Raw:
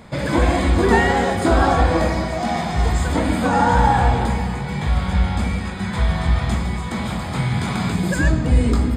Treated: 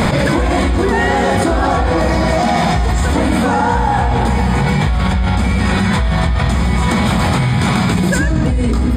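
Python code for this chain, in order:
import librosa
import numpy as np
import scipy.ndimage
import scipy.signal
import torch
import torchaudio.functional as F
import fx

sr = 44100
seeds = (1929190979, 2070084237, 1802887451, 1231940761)

y = fx.env_flatten(x, sr, amount_pct=100)
y = y * 10.0 ** (-3.5 / 20.0)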